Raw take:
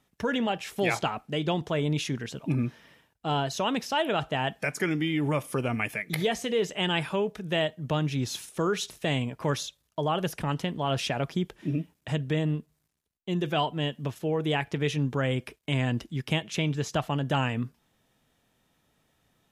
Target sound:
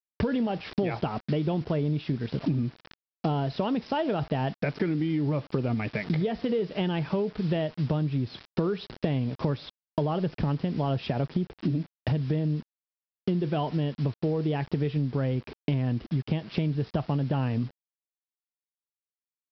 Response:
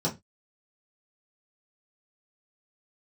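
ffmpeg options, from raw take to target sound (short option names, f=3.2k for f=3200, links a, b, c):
-af "tiltshelf=f=830:g=8,acontrast=22,aresample=11025,acrusher=bits=6:mix=0:aa=0.000001,aresample=44100,acompressor=threshold=-30dB:ratio=10,volume=5.5dB"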